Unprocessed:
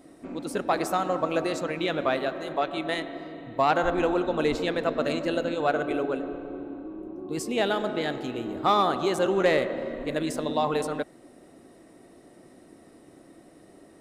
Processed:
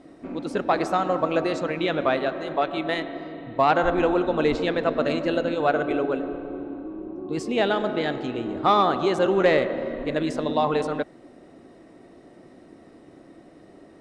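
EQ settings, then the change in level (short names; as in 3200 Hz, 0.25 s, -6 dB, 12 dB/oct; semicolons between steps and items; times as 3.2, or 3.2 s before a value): air absorption 96 m; +3.5 dB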